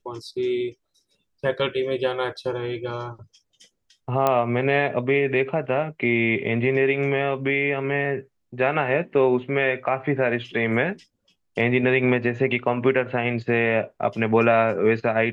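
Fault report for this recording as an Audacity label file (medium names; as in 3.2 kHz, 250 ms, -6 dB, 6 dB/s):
4.270000	4.270000	pop -8 dBFS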